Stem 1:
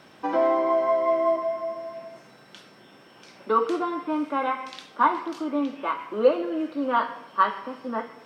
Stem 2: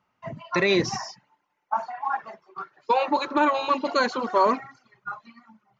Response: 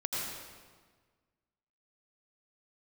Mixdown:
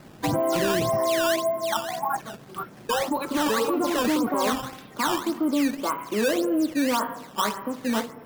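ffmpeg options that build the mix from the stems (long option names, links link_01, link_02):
-filter_complex "[0:a]volume=1dB[link_01];[1:a]alimiter=limit=-18dB:level=0:latency=1:release=286,volume=2.5dB[link_02];[link_01][link_02]amix=inputs=2:normalize=0,aemphasis=mode=reproduction:type=riaa,acrusher=samples=12:mix=1:aa=0.000001:lfo=1:lforange=19.2:lforate=1.8,alimiter=limit=-17dB:level=0:latency=1:release=21"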